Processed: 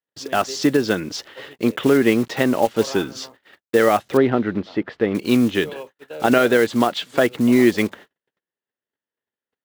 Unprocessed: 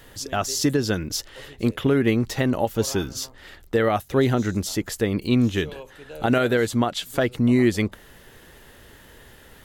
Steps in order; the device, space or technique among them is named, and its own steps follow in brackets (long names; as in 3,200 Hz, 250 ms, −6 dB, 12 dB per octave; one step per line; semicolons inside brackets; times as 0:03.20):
noise gate −41 dBFS, range −49 dB
early digital voice recorder (band-pass filter 220–3,700 Hz; one scale factor per block 5 bits)
0:04.17–0:05.15: high-frequency loss of the air 360 metres
level +5.5 dB